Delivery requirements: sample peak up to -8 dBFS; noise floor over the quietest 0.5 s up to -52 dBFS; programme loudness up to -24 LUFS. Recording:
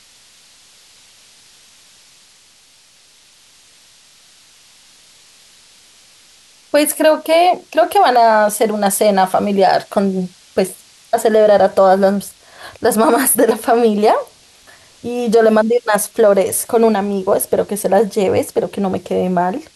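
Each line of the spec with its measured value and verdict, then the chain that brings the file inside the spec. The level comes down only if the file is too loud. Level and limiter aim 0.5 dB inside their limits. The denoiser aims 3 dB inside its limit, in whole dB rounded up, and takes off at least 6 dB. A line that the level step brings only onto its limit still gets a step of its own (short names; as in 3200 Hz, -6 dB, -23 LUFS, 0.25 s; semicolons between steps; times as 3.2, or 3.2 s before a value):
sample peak -3.0 dBFS: fail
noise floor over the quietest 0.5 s -49 dBFS: fail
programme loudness -14.5 LUFS: fail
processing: gain -10 dB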